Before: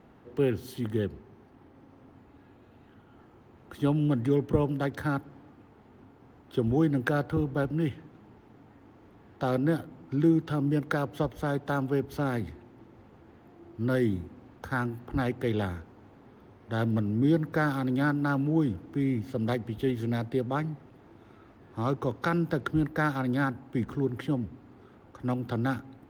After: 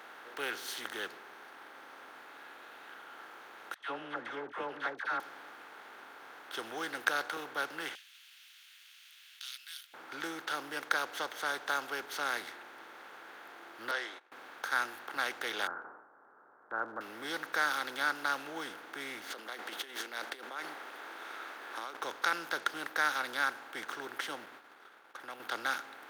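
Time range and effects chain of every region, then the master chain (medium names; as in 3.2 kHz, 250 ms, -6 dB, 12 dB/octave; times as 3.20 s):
3.74–5.20 s: gate -38 dBFS, range -25 dB + low-pass 1.9 kHz + phase dispersion lows, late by 73 ms, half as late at 830 Hz
7.95–9.94 s: elliptic high-pass 2.8 kHz, stop band 80 dB + three bands compressed up and down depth 40%
13.91–14.32 s: high-pass 430 Hz 24 dB/octave + distance through air 150 m + gate -51 dBFS, range -27 dB
15.67–17.01 s: steep low-pass 1.5 kHz 72 dB/octave + gate -43 dBFS, range -16 dB + decay stretcher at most 99 dB/s
19.30–21.97 s: high-pass 230 Hz 24 dB/octave + compressor with a negative ratio -39 dBFS
24.46–25.40 s: expander -45 dBFS + compression 4:1, threshold -38 dBFS
whole clip: spectral levelling over time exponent 0.6; high-pass 1.2 kHz 12 dB/octave; dynamic bell 6 kHz, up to +7 dB, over -53 dBFS, Q 0.98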